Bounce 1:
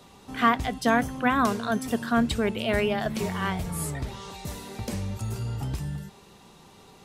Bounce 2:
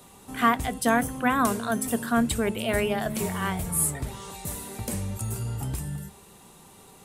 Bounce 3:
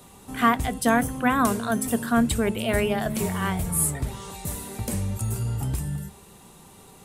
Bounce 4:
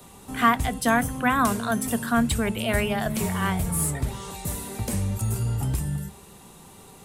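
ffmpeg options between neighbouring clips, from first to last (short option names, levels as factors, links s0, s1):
-af "highshelf=f=6900:t=q:w=1.5:g=9,bandreject=f=70.1:t=h:w=4,bandreject=f=140.2:t=h:w=4,bandreject=f=210.3:t=h:w=4,bandreject=f=280.4:t=h:w=4,bandreject=f=350.5:t=h:w=4,bandreject=f=420.6:t=h:w=4,bandreject=f=490.7:t=h:w=4,bandreject=f=560.8:t=h:w=4,bandreject=f=630.9:t=h:w=4"
-af "lowshelf=f=200:g=4,volume=1.12"
-filter_complex "[0:a]acrossover=split=250|580|6800[s0][s1][s2][s3];[s1]acompressor=threshold=0.0141:ratio=6[s4];[s3]asoftclip=type=tanh:threshold=0.0398[s5];[s0][s4][s2][s5]amix=inputs=4:normalize=0,volume=1.19"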